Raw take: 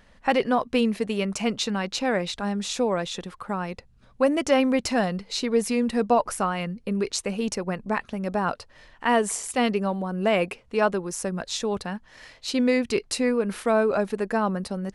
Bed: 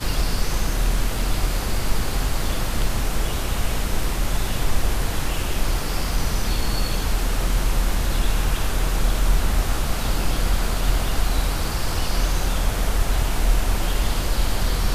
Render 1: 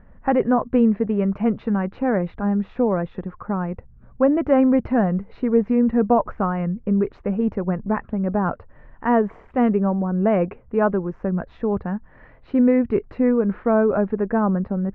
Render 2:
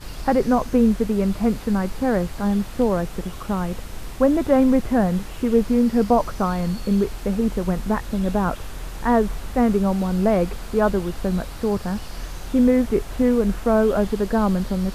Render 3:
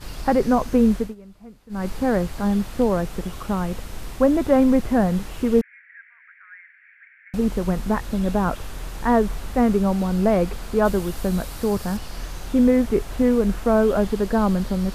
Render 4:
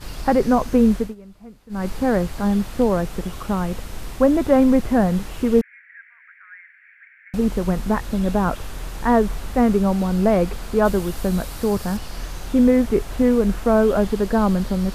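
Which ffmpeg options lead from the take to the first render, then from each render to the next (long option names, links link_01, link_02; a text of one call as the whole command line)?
ffmpeg -i in.wav -af "lowpass=frequency=1700:width=0.5412,lowpass=frequency=1700:width=1.3066,lowshelf=frequency=320:gain=10.5" out.wav
ffmpeg -i in.wav -i bed.wav -filter_complex "[1:a]volume=-11.5dB[link_01];[0:a][link_01]amix=inputs=2:normalize=0" out.wav
ffmpeg -i in.wav -filter_complex "[0:a]asettb=1/sr,asplit=3[link_01][link_02][link_03];[link_01]atrim=end=5.614[link_04];[link_02]atrim=start=5.61:end=7.34,asetpts=PTS-STARTPTS,afade=type=in:duration=0.004:curve=qsin,afade=type=out:start_time=1.726:duration=0.004:curve=qsin,asuperpass=centerf=1900:order=8:qfactor=2.6[link_05];[link_03]atrim=start=7.336[link_06];[link_04][link_05]acrossfade=duration=0.004:curve1=hsin:curve2=qsin[link_07];[link_07][link_06]acrossfade=duration=0.004:curve1=qsin:curve2=hsin,asettb=1/sr,asplit=3[link_08][link_09][link_10];[link_08]atrim=end=10.854[link_11];[link_09]atrim=start=10.85:end=11.97,asetpts=PTS-STARTPTS,afade=type=in:duration=0.004:curve=qsin,afade=type=out:start_time=1.116:duration=0.004:curve=qsin,highshelf=frequency=6900:gain=8.5[link_12];[link_10]atrim=start=11.966[link_13];[link_11][link_12]acrossfade=duration=0.004:curve1=hsin:curve2=qsin[link_14];[link_14][link_13]acrossfade=duration=0.004:curve1=qsin:curve2=hsin,asplit=3[link_15][link_16][link_17];[link_15]atrim=end=1.15,asetpts=PTS-STARTPTS,afade=type=out:start_time=0.96:duration=0.19:silence=0.0707946[link_18];[link_16]atrim=start=1.15:end=1.69,asetpts=PTS-STARTPTS,volume=-23dB[link_19];[link_17]atrim=start=1.69,asetpts=PTS-STARTPTS,afade=type=in:duration=0.19:silence=0.0707946[link_20];[link_18][link_19][link_20]concat=n=3:v=0:a=1" out.wav
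ffmpeg -i in.wav -af "volume=1.5dB" out.wav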